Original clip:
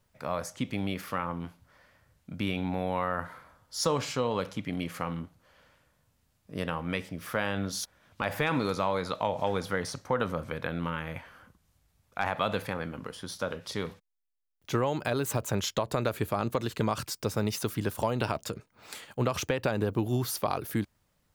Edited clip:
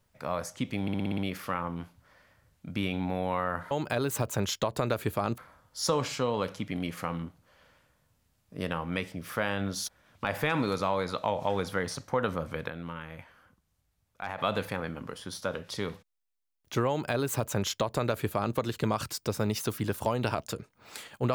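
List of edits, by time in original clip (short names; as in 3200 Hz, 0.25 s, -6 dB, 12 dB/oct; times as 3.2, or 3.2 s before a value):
0.82 stutter 0.06 s, 7 plays
10.65–12.35 gain -6.5 dB
14.86–16.53 copy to 3.35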